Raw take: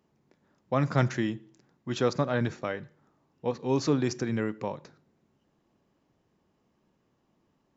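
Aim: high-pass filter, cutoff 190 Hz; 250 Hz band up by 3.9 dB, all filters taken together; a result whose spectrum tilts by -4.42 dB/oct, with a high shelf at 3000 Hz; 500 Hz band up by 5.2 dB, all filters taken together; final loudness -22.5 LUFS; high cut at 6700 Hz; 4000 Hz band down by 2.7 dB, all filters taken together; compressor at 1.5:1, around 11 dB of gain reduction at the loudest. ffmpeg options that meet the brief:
-af "highpass=190,lowpass=6.7k,equalizer=f=250:t=o:g=4.5,equalizer=f=500:t=o:g=5,highshelf=f=3k:g=5,equalizer=f=4k:t=o:g=-7,acompressor=threshold=-48dB:ratio=1.5,volume=14.5dB"

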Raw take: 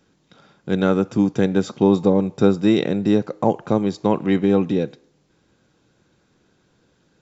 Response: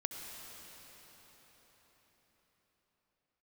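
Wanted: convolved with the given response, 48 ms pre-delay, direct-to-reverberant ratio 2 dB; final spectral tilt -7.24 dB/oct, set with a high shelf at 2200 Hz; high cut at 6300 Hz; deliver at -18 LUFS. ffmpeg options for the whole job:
-filter_complex "[0:a]lowpass=6.3k,highshelf=f=2.2k:g=-6,asplit=2[a][b];[1:a]atrim=start_sample=2205,adelay=48[c];[b][c]afir=irnorm=-1:irlink=0,volume=-2.5dB[d];[a][d]amix=inputs=2:normalize=0"

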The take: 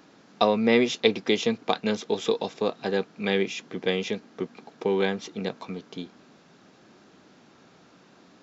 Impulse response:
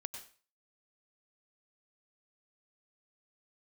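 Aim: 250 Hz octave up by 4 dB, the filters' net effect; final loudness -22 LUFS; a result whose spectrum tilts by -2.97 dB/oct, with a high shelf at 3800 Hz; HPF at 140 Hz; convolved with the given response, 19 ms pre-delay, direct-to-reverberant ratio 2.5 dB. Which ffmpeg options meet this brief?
-filter_complex "[0:a]highpass=140,equalizer=f=250:t=o:g=5.5,highshelf=f=3.8k:g=8,asplit=2[a][b];[1:a]atrim=start_sample=2205,adelay=19[c];[b][c]afir=irnorm=-1:irlink=0,volume=-0.5dB[d];[a][d]amix=inputs=2:normalize=0"

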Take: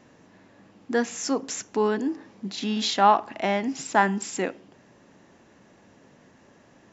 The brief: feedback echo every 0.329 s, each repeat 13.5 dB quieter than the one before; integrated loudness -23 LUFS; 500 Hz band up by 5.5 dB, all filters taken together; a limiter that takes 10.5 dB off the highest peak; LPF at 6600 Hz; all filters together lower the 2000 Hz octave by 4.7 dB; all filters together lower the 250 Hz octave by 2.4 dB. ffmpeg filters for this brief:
-af "lowpass=6.6k,equalizer=f=250:t=o:g=-5,equalizer=f=500:t=o:g=8.5,equalizer=f=2k:t=o:g=-6.5,alimiter=limit=-15dB:level=0:latency=1,aecho=1:1:329|658:0.211|0.0444,volume=4.5dB"

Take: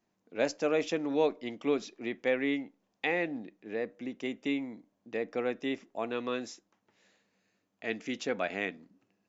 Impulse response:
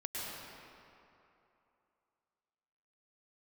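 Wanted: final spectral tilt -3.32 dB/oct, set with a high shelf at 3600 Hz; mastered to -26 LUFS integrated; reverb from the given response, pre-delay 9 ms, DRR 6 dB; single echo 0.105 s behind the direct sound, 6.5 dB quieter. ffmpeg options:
-filter_complex "[0:a]highshelf=f=3.6k:g=-4,aecho=1:1:105:0.473,asplit=2[a][b];[1:a]atrim=start_sample=2205,adelay=9[c];[b][c]afir=irnorm=-1:irlink=0,volume=-8.5dB[d];[a][d]amix=inputs=2:normalize=0,volume=7dB"

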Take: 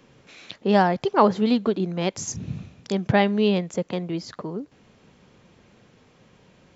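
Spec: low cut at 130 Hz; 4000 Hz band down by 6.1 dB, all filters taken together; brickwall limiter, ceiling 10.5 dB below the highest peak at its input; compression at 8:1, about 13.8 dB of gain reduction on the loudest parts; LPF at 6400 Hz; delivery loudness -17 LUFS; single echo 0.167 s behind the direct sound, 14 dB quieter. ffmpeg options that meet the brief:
-af "highpass=130,lowpass=6.4k,equalizer=f=4k:t=o:g=-8,acompressor=threshold=-26dB:ratio=8,alimiter=level_in=2.5dB:limit=-24dB:level=0:latency=1,volume=-2.5dB,aecho=1:1:167:0.2,volume=19.5dB"

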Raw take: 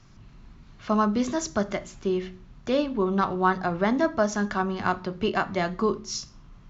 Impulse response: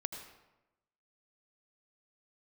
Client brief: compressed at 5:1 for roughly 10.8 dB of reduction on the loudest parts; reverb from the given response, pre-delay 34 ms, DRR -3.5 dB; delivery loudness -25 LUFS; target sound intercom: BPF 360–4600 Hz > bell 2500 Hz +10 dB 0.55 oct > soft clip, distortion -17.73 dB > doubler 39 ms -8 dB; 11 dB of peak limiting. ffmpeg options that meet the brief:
-filter_complex "[0:a]acompressor=threshold=-30dB:ratio=5,alimiter=level_in=2dB:limit=-24dB:level=0:latency=1,volume=-2dB,asplit=2[a][b];[1:a]atrim=start_sample=2205,adelay=34[c];[b][c]afir=irnorm=-1:irlink=0,volume=3.5dB[d];[a][d]amix=inputs=2:normalize=0,highpass=360,lowpass=4.6k,equalizer=f=2.5k:t=o:w=0.55:g=10,asoftclip=threshold=-26.5dB,asplit=2[e][f];[f]adelay=39,volume=-8dB[g];[e][g]amix=inputs=2:normalize=0,volume=10dB"

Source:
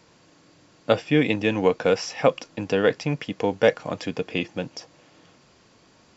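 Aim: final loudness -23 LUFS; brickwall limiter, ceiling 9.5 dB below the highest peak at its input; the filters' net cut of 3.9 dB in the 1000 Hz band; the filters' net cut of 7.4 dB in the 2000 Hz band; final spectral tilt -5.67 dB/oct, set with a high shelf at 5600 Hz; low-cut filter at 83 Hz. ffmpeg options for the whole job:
-af "highpass=83,equalizer=f=1k:t=o:g=-3.5,equalizer=f=2k:t=o:g=-8,highshelf=f=5.6k:g=-5.5,volume=6.5dB,alimiter=limit=-10dB:level=0:latency=1"

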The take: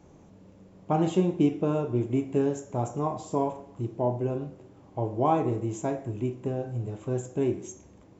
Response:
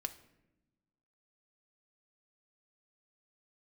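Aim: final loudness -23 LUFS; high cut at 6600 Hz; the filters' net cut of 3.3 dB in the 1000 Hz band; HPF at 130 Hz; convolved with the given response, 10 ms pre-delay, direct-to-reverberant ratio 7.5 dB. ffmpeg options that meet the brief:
-filter_complex "[0:a]highpass=130,lowpass=6.6k,equalizer=f=1k:t=o:g=-4.5,asplit=2[a][b];[1:a]atrim=start_sample=2205,adelay=10[c];[b][c]afir=irnorm=-1:irlink=0,volume=-6.5dB[d];[a][d]amix=inputs=2:normalize=0,volume=6.5dB"

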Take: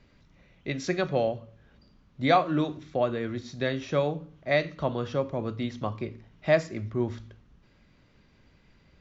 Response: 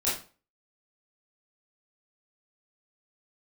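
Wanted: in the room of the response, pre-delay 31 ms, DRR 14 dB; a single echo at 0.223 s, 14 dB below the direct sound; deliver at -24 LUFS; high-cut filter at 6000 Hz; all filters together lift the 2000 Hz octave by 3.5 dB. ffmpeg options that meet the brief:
-filter_complex "[0:a]lowpass=6k,equalizer=f=2k:t=o:g=4,aecho=1:1:223:0.2,asplit=2[a][b];[1:a]atrim=start_sample=2205,adelay=31[c];[b][c]afir=irnorm=-1:irlink=0,volume=-22.5dB[d];[a][d]amix=inputs=2:normalize=0,volume=4dB"

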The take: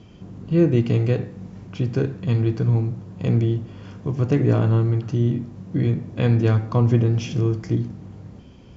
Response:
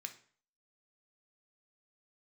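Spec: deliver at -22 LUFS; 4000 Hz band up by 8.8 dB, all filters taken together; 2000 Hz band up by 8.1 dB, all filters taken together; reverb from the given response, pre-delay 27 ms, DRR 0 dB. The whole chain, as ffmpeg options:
-filter_complex "[0:a]equalizer=f=2k:t=o:g=8,equalizer=f=4k:t=o:g=8.5,asplit=2[a][b];[1:a]atrim=start_sample=2205,adelay=27[c];[b][c]afir=irnorm=-1:irlink=0,volume=3dB[d];[a][d]amix=inputs=2:normalize=0,volume=-2.5dB"

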